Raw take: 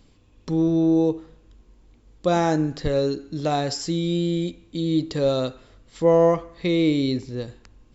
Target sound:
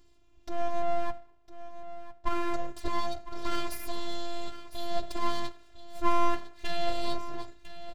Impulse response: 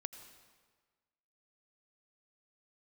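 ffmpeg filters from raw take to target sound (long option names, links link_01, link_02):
-filter_complex "[0:a]asettb=1/sr,asplit=3[link_01][link_02][link_03];[link_01]atrim=end=0.824[link_04];[link_02]atrim=start=0.82:end=2.54,asetpts=PTS-STARTPTS,afade=type=in:duration=0.004:curve=qsin,afade=type=out:start_time=1.716:duration=0.004:curve=qsin,bandpass=frequency=490:width_type=q:width=0.66:csg=0[link_05];[link_03]atrim=start=2.536[link_06];[link_04][link_05]acrossfade=duration=0.004:curve1=hsin:curve2=qsin[link_07];[link_07][link_06]acrossfade=duration=0.004:curve1=qsin:curve2=hsin,aeval=exprs='abs(val(0))':channel_layout=same,asplit=2[link_08][link_09];[link_09]aecho=0:1:1005:0.2[link_10];[link_08][link_10]amix=inputs=2:normalize=0,afftfilt=real='hypot(re,im)*cos(PI*b)':imag='0':win_size=512:overlap=0.75,volume=-2.5dB"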